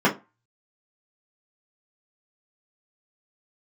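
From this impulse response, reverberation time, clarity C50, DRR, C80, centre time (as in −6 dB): 0.25 s, 14.5 dB, −5.0 dB, 22.5 dB, 15 ms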